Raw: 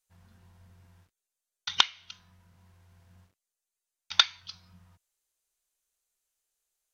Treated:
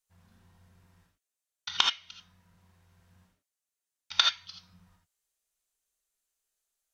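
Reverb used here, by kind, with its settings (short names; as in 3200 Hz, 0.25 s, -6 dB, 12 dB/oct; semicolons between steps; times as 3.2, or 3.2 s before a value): non-linear reverb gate 0.1 s rising, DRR 1.5 dB; gain -3.5 dB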